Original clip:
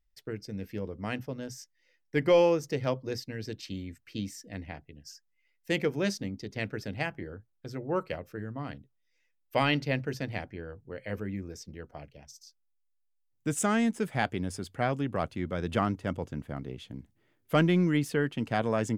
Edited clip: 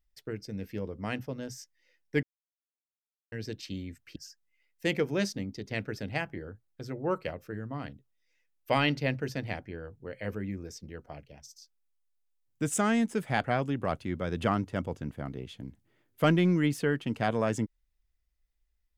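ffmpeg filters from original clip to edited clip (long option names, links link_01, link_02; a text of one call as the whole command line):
ffmpeg -i in.wav -filter_complex "[0:a]asplit=5[link_01][link_02][link_03][link_04][link_05];[link_01]atrim=end=2.23,asetpts=PTS-STARTPTS,afade=type=out:start_time=2.226:duration=0.004:curve=hsin[link_06];[link_02]atrim=start=2.23:end=3.32,asetpts=PTS-STARTPTS,volume=0[link_07];[link_03]atrim=start=3.32:end=4.162,asetpts=PTS-STARTPTS,afade=type=in:duration=0.004:curve=hsin[link_08];[link_04]atrim=start=5.008:end=14.292[link_09];[link_05]atrim=start=14.748[link_10];[link_06][link_07][link_08]concat=n=3:v=0:a=1[link_11];[link_11][link_09]acrossfade=duration=0.004:curve1=hsin:curve2=hsin[link_12];[link_12][link_10]acrossfade=duration=0.004:curve1=hsin:curve2=hsin" out.wav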